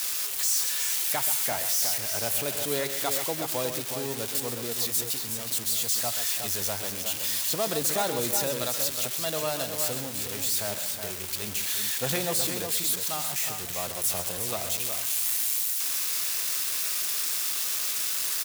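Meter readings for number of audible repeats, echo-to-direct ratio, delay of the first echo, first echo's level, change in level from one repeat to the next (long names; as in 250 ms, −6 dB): 3, −5.0 dB, 131 ms, −10.0 dB, repeats not evenly spaced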